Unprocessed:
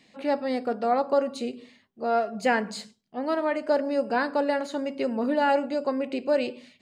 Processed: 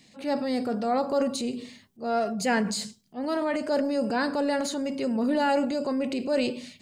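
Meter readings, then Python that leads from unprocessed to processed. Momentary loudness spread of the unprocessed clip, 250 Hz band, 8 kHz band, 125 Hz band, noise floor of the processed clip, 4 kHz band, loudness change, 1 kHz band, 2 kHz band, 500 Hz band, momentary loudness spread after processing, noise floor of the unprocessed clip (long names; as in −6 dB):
10 LU, +2.5 dB, +10.0 dB, can't be measured, −58 dBFS, +4.0 dB, −0.5 dB, −2.5 dB, −1.5 dB, −2.0 dB, 8 LU, −63 dBFS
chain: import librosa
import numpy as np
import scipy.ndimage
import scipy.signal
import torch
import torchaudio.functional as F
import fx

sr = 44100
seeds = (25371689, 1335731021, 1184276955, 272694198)

y = fx.bass_treble(x, sr, bass_db=9, treble_db=11)
y = fx.transient(y, sr, attack_db=-4, sustain_db=6)
y = y * librosa.db_to_amplitude(-2.0)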